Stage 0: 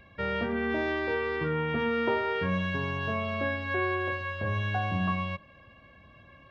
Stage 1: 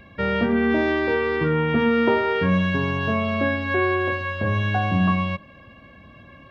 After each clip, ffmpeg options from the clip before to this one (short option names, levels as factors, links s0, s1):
-af "equalizer=f=240:w=1.2:g=5.5,volume=2.11"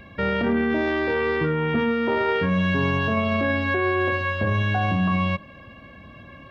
-af "alimiter=limit=0.141:level=0:latency=1:release=10,volume=1.33"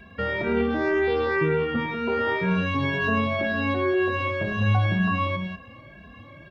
-filter_complex "[0:a]asplit=2[s0][s1];[s1]aecho=0:1:105|192.4:0.398|0.447[s2];[s0][s2]amix=inputs=2:normalize=0,asplit=2[s3][s4];[s4]adelay=2.6,afreqshift=2[s5];[s3][s5]amix=inputs=2:normalize=1"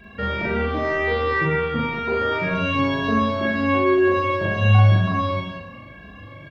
-filter_complex "[0:a]asplit=2[s0][s1];[s1]adelay=40,volume=0.631[s2];[s0][s2]amix=inputs=2:normalize=0,asplit=2[s3][s4];[s4]aecho=0:1:40|88|145.6|214.7|297.7:0.631|0.398|0.251|0.158|0.1[s5];[s3][s5]amix=inputs=2:normalize=0"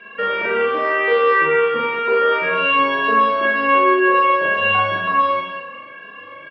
-af "highpass=420,equalizer=f=480:t=q:w=4:g=9,equalizer=f=720:t=q:w=4:g=-5,equalizer=f=1100:t=q:w=4:g=7,equalizer=f=1600:t=q:w=4:g=6,equalizer=f=2800:t=q:w=4:g=8,equalizer=f=3900:t=q:w=4:g=-7,lowpass=f=4600:w=0.5412,lowpass=f=4600:w=1.3066,volume=1.26"